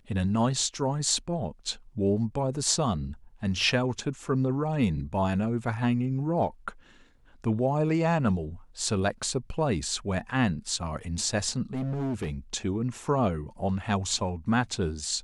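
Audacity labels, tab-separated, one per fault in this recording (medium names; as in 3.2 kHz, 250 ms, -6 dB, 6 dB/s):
11.730000	12.360000	clipped -27 dBFS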